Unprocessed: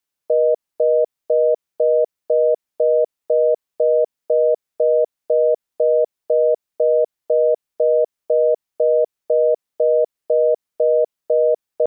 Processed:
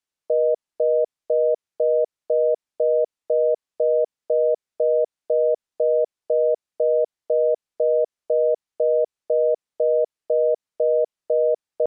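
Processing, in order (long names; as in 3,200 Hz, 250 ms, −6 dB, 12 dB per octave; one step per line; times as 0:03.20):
low-pass filter 9,300 Hz 12 dB per octave
level −3.5 dB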